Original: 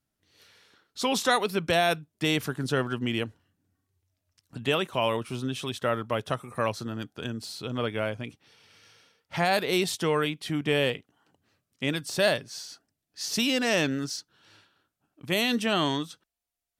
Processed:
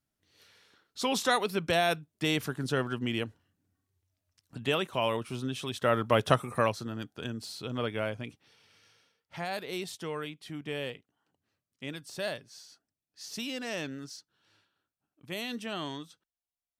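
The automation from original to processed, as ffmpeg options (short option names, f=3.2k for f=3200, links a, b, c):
-af "volume=6dB,afade=t=in:st=5.7:d=0.63:silence=0.354813,afade=t=out:st=6.33:d=0.44:silence=0.354813,afade=t=out:st=8.27:d=1.09:silence=0.398107"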